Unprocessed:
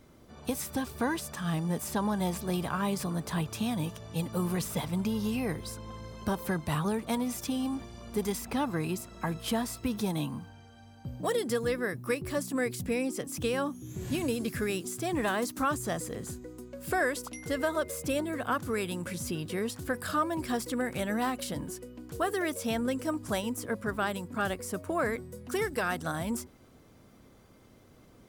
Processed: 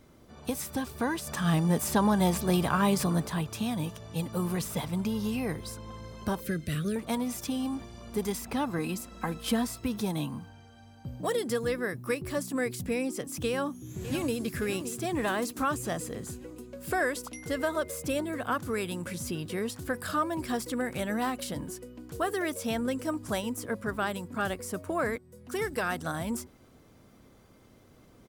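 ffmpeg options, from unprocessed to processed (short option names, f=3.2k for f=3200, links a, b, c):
-filter_complex "[0:a]asettb=1/sr,asplit=3[a][b][c];[a]atrim=end=6.404[d];[b]atrim=start=6.4:end=6.96,asetpts=PTS-STARTPTS,afade=t=in:d=0.004:c=qsin,afade=t=out:st=0.556:d=0.004:c=qsin,asuperstop=centerf=900:order=4:qfactor=0.9[e];[c]atrim=start=6.956[f];[d][e]acrossfade=d=0.004:c1=hsin:c2=qsin[g];[g][f]acrossfade=d=0.004:c1=qsin:c2=hsin,asettb=1/sr,asplit=3[h][i][j];[h]atrim=end=8.784[k];[i]atrim=start=8.78:end=9.67,asetpts=PTS-STARTPTS,afade=t=in:d=0.004:c=qsin,afade=t=out:st=0.886:d=0.004:c=qsin,aecho=1:1:3.9:0.64,atrim=end_sample=39249[l];[j]atrim=start=9.666[m];[k][l]acrossfade=d=0.004:c1=hsin:c2=qsin[n];[n][m]acrossfade=d=0.004:c1=qsin:c2=hsin,asplit=2[o][p];[p]afade=t=in:st=13.47:d=0.01,afade=t=out:st=14.48:d=0.01,aecho=0:1:570|1140|1710|2280|2850|3420|3990:0.266073|0.159644|0.0957861|0.0574717|0.034483|0.0206898|0.0124139[q];[o][q]amix=inputs=2:normalize=0,asplit=4[r][s][t][u];[r]atrim=end=1.272[v];[s]atrim=start=1.268:end=3.272,asetpts=PTS-STARTPTS,volume=5.5dB[w];[t]atrim=start=3.268:end=25.18,asetpts=PTS-STARTPTS,afade=t=out:st=21.908:d=0.004:c=hsin:silence=0.125893[x];[u]atrim=start=25.18,asetpts=PTS-STARTPTS,afade=t=in:d=0.49:silence=0.125893[y];[v][w]acrossfade=d=0.004:c1=hsin:c2=hsin[z];[x][y]concat=n=2:v=0:a=1[aa];[z][aa]acrossfade=d=0.004:c1=hsin:c2=hsin"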